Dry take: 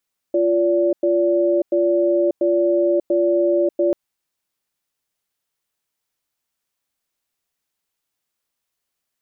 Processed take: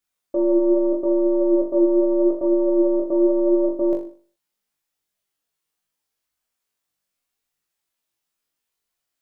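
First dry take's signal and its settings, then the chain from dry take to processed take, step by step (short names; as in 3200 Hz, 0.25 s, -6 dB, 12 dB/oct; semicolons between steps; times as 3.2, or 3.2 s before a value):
cadence 347 Hz, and 577 Hz, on 0.59 s, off 0.10 s, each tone -17 dBFS 3.59 s
tracing distortion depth 0.091 ms; flutter echo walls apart 3.5 m, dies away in 0.43 s; flange 0.79 Hz, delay 0.2 ms, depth 6.3 ms, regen +69%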